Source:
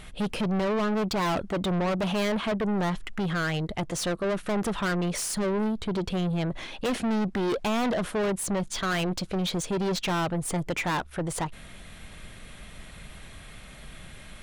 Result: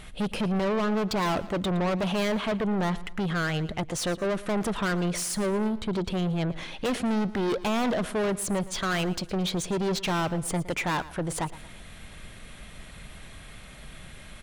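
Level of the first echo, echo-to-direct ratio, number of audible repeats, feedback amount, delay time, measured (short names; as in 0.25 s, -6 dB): -17.5 dB, -17.0 dB, 3, 39%, 0.114 s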